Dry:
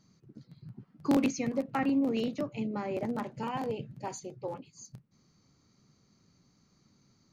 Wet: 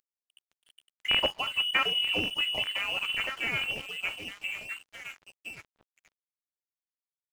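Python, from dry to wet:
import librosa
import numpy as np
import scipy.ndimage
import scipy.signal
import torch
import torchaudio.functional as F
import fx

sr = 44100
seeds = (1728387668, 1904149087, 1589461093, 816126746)

p1 = fx.tilt_eq(x, sr, slope=4.0)
p2 = p1 + fx.echo_stepped(p1, sr, ms=508, hz=200.0, octaves=1.4, feedback_pct=70, wet_db=-1, dry=0)
p3 = fx.freq_invert(p2, sr, carrier_hz=3200)
p4 = np.sign(p3) * np.maximum(np.abs(p3) - 10.0 ** (-52.5 / 20.0), 0.0)
y = p4 * 10.0 ** (6.0 / 20.0)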